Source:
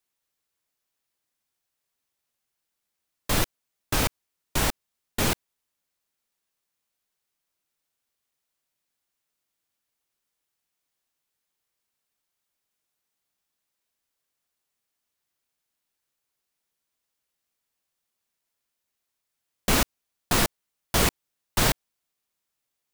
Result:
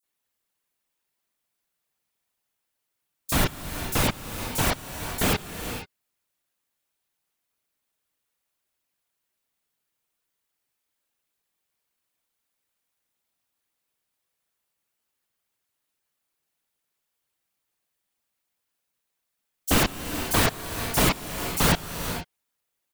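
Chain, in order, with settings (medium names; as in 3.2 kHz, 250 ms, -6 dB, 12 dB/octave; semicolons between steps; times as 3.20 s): whisper effect; bands offset in time highs, lows 30 ms, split 5.6 kHz; gated-style reverb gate 500 ms rising, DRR 8 dB; trim +1.5 dB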